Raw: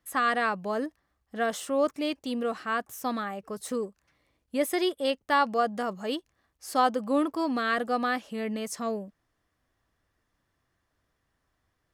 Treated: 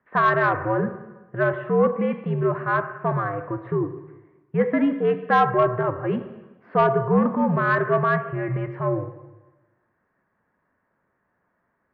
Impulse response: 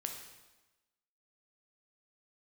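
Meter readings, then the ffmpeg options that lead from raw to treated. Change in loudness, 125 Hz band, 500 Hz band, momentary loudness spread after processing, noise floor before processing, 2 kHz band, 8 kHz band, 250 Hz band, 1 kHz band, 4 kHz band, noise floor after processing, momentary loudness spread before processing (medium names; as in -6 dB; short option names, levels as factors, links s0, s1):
+6.5 dB, no reading, +7.5 dB, 10 LU, -77 dBFS, +6.0 dB, under -25 dB, +6.0 dB, +5.5 dB, -8.5 dB, -73 dBFS, 10 LU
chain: -filter_complex "[0:a]highpass=f=190:t=q:w=0.5412,highpass=f=190:t=q:w=1.307,lowpass=f=2100:t=q:w=0.5176,lowpass=f=2100:t=q:w=0.7071,lowpass=f=2100:t=q:w=1.932,afreqshift=-88,asplit=2[s0][s1];[1:a]atrim=start_sample=2205,asetrate=43218,aresample=44100[s2];[s1][s2]afir=irnorm=-1:irlink=0,volume=1.33[s3];[s0][s3]amix=inputs=2:normalize=0,acontrast=71,volume=0.531"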